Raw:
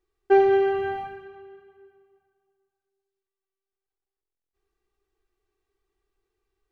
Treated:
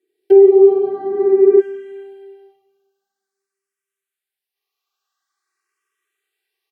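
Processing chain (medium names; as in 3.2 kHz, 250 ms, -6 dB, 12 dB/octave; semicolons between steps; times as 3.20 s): in parallel at -12 dB: small samples zeroed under -28.5 dBFS; on the sum: bass shelf 130 Hz -10.5 dB; high-pass sweep 270 Hz -> 1.1 kHz, 2.28–3.00 s; peaking EQ 960 Hz -14 dB 1.2 oct; feedback delay 372 ms, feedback 46%, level -20 dB; gated-style reverb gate 490 ms flat, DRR -6.5 dB; low-pass that closes with the level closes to 750 Hz, closed at -18 dBFS; spectral freeze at 0.44 s, 1.14 s; barber-pole phaser +0.48 Hz; trim +6 dB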